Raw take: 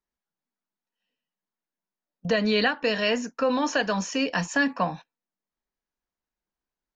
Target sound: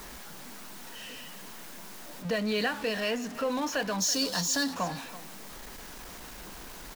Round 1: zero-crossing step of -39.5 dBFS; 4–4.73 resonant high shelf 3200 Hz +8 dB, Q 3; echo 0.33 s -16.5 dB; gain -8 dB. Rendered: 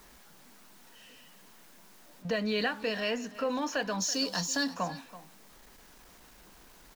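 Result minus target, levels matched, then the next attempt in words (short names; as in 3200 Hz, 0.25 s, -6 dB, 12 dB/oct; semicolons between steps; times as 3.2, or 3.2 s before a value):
zero-crossing step: distortion -10 dB
zero-crossing step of -28 dBFS; 4–4.73 resonant high shelf 3200 Hz +8 dB, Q 3; echo 0.33 s -16.5 dB; gain -8 dB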